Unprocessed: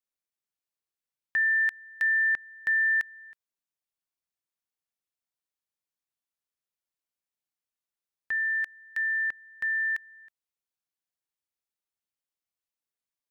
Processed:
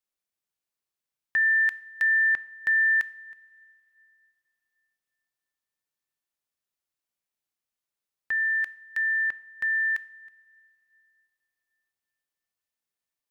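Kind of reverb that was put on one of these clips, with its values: two-slope reverb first 0.54 s, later 3.3 s, from -17 dB, DRR 15.5 dB; gain +2 dB

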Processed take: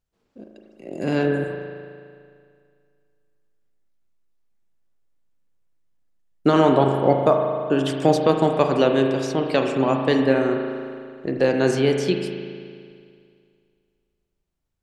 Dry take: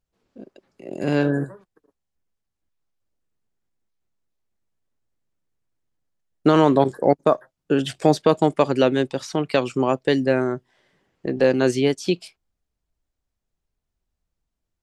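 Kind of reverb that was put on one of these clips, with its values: spring tank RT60 2.2 s, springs 37 ms, chirp 45 ms, DRR 3 dB; gain -1 dB

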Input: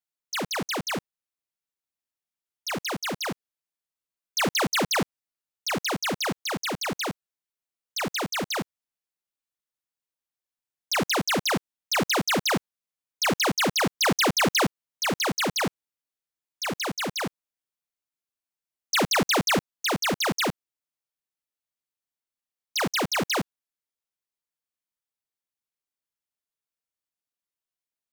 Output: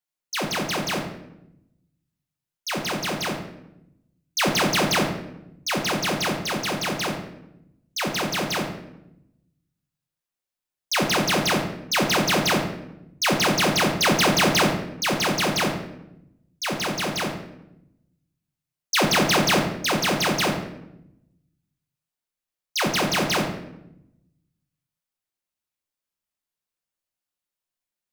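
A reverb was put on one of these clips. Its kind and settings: shoebox room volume 260 m³, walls mixed, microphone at 0.94 m; gain +1 dB

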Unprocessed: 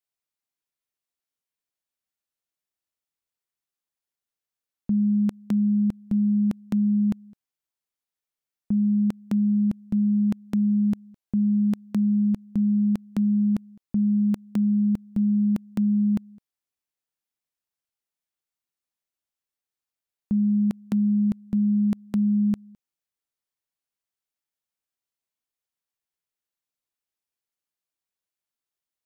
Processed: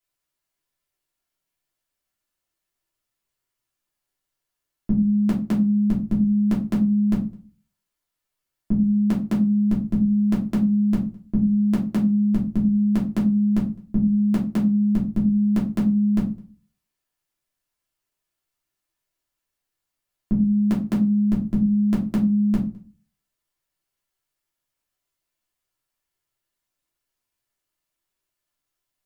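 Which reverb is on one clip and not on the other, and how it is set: shoebox room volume 140 m³, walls furnished, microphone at 3 m; gain +1.5 dB

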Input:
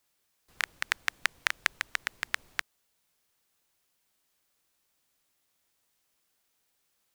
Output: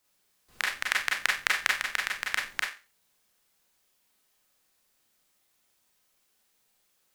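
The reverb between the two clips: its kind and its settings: Schroeder reverb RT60 0.31 s, combs from 30 ms, DRR -2 dB

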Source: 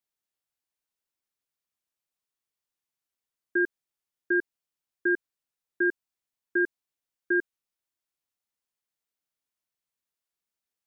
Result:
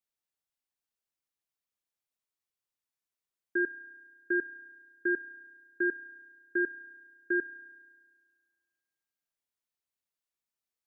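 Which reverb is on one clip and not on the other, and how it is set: spring tank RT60 1.7 s, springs 32 ms, chirp 50 ms, DRR 14.5 dB; gain -4 dB

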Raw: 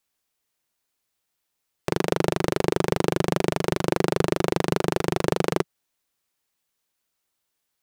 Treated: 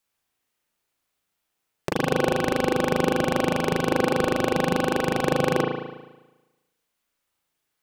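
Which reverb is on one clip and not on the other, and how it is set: spring tank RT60 1.1 s, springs 36 ms, chirp 70 ms, DRR -2 dB; gain -1.5 dB

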